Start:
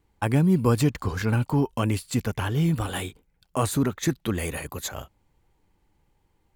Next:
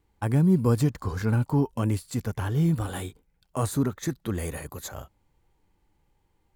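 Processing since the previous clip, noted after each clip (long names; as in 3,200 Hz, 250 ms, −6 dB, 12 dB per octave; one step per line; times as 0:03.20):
harmonic and percussive parts rebalanced percussive −5 dB
dynamic equaliser 2,700 Hz, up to −7 dB, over −55 dBFS, Q 1.7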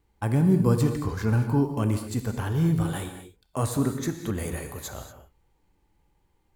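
reverb whose tail is shaped and stops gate 260 ms flat, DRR 6.5 dB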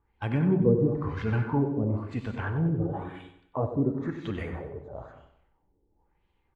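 spectral magnitudes quantised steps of 15 dB
auto-filter low-pass sine 0.99 Hz 430–3,100 Hz
repeating echo 94 ms, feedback 43%, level −11 dB
level −4 dB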